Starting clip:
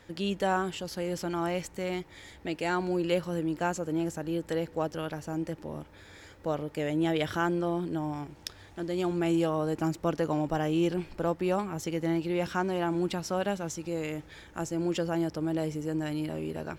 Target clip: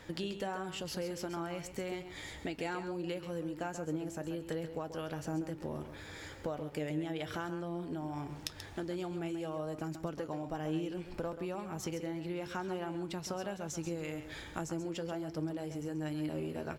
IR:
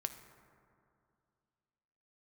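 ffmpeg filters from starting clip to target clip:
-filter_complex "[0:a]acompressor=threshold=-38dB:ratio=10,flanger=delay=6.3:depth=1.8:regen=73:speed=1.3:shape=sinusoidal,asplit=2[link_01][link_02];[link_02]aecho=0:1:134:0.316[link_03];[link_01][link_03]amix=inputs=2:normalize=0,volume=7.5dB"

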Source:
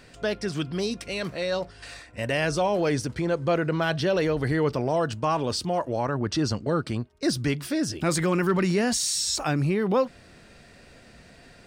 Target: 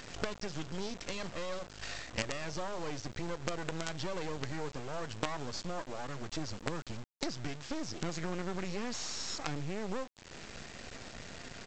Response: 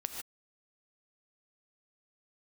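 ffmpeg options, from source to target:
-af "acompressor=threshold=-40dB:ratio=5,aresample=16000,acrusher=bits=6:dc=4:mix=0:aa=0.000001,aresample=44100,volume=6.5dB"

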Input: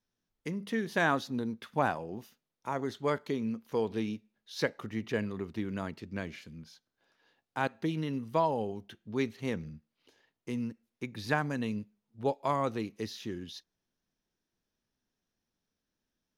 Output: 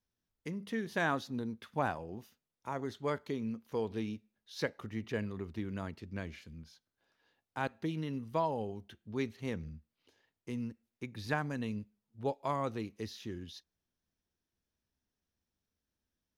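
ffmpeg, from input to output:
ffmpeg -i in.wav -af "equalizer=frequency=72:width_type=o:width=0.78:gain=11.5,volume=-4.5dB" out.wav

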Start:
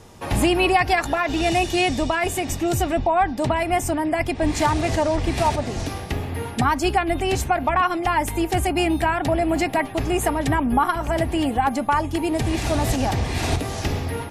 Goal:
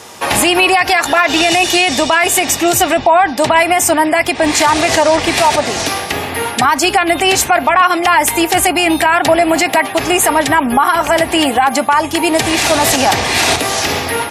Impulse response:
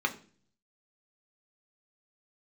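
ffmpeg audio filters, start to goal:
-af "highpass=frequency=990:poles=1,alimiter=level_in=19dB:limit=-1dB:release=50:level=0:latency=1,volume=-1dB"

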